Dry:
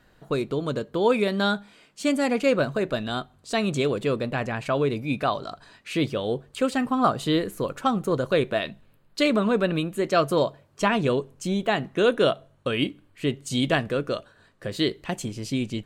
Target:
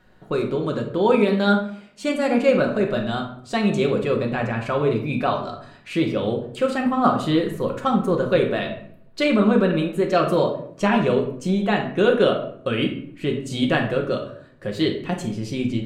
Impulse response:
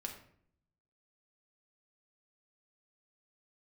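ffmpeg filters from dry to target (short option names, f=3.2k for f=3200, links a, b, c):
-filter_complex "[0:a]highshelf=f=4.1k:g=-7.5[a];[1:a]atrim=start_sample=2205[b];[a][b]afir=irnorm=-1:irlink=0,volume=5dB"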